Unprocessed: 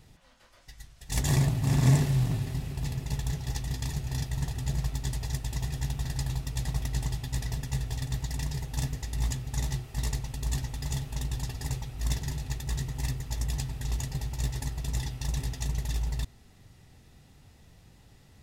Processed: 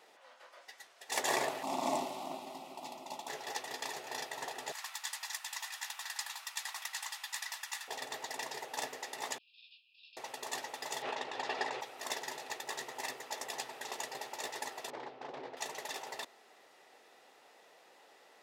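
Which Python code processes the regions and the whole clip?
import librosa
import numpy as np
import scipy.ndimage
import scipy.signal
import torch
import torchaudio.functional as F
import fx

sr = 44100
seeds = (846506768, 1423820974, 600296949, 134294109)

y = fx.chain(x, sr, fx.bass_treble(bass_db=9, treble_db=-5),
    fx.fixed_phaser(hz=450.0, stages=6), at=(1.63, 3.28))
y = fx.chain(y, sr, fx.cheby2_highpass(hz=390.0, order=4, stop_db=50),
    fx.high_shelf(hz=5000.0, db=5.0), at=(4.72, 7.88))
y = fx.chain(y, sr, fx.brickwall_bandpass(low_hz=2400.0, high_hz=5400.0),
    fx.air_absorb(metres=320.0),
    fx.detune_double(cents=32), at=(9.38, 10.17))
y = fx.chain(y, sr, fx.lowpass(hz=3800.0, slope=12),
    fx.env_flatten(amount_pct=100), at=(11.02, 11.81))
y = fx.chain(y, sr, fx.self_delay(depth_ms=0.64),
    fx.ladder_lowpass(hz=6100.0, resonance_pct=20),
    fx.tilt_shelf(db=9.0, hz=1100.0), at=(14.9, 15.57))
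y = scipy.signal.sosfilt(scipy.signal.butter(4, 460.0, 'highpass', fs=sr, output='sos'), y)
y = fx.high_shelf(y, sr, hz=3100.0, db=-12.0)
y = y * 10.0 ** (7.0 / 20.0)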